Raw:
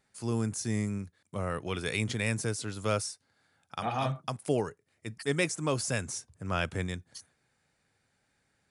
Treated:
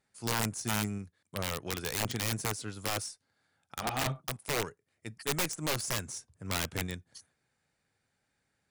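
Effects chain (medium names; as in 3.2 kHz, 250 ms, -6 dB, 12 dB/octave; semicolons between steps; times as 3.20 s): Chebyshev shaper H 3 -26 dB, 4 -31 dB, 7 -24 dB, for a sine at -14.5 dBFS; integer overflow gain 25.5 dB; trim +3 dB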